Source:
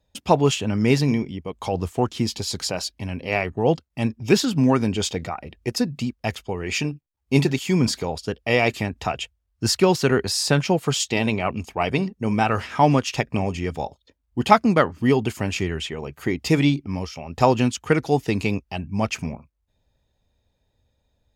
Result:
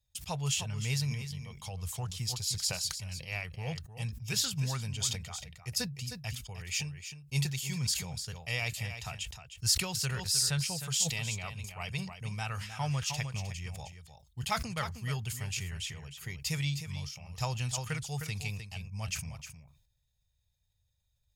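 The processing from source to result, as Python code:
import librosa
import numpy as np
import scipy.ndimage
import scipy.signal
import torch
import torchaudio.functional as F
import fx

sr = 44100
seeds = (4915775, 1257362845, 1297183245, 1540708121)

p1 = fx.curve_eq(x, sr, hz=(140.0, 290.0, 470.0, 9800.0), db=(0, -28, -16, 9))
p2 = p1 + fx.echo_single(p1, sr, ms=309, db=-10.5, dry=0)
p3 = fx.sustainer(p2, sr, db_per_s=84.0)
y = p3 * librosa.db_to_amplitude(-9.0)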